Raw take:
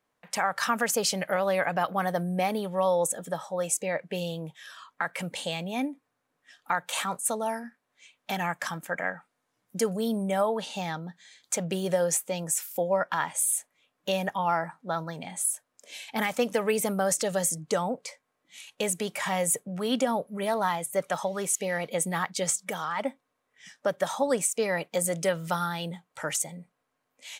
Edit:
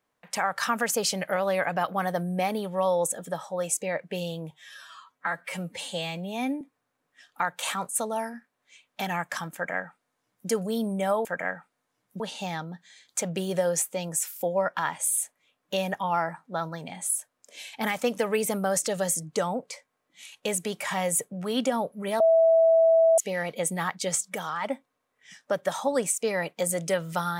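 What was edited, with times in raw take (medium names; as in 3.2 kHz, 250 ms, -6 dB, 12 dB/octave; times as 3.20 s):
4.51–5.91 s: stretch 1.5×
8.84–9.79 s: copy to 10.55 s
20.55–21.53 s: bleep 655 Hz -15.5 dBFS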